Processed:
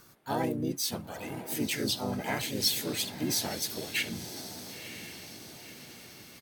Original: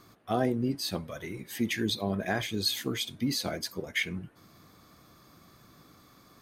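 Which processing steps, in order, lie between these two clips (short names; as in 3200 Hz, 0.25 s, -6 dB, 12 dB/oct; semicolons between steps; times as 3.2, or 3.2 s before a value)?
bell 13000 Hz +11.5 dB 1.7 oct; diffused feedback echo 0.986 s, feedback 53%, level -10.5 dB; harmoniser -4 st -10 dB, +4 st 0 dB; gain -6 dB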